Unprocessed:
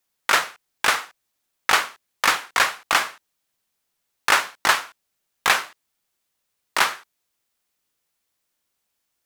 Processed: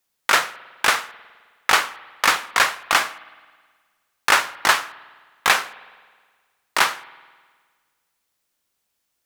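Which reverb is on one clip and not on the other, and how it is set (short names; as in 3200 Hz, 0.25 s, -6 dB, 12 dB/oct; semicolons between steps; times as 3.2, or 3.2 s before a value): spring tank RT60 1.6 s, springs 52 ms, chirp 65 ms, DRR 18.5 dB; gain +1.5 dB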